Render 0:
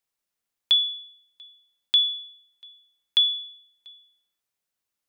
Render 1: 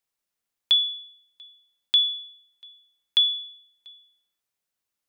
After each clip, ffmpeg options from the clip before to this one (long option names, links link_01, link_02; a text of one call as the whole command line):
ffmpeg -i in.wav -af anull out.wav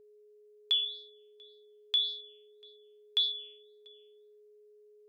ffmpeg -i in.wav -af "flanger=delay=4.8:depth=9.2:regen=64:speed=1.8:shape=sinusoidal,aeval=exprs='val(0)+0.00251*sin(2*PI*420*n/s)':channel_layout=same,volume=-4.5dB" out.wav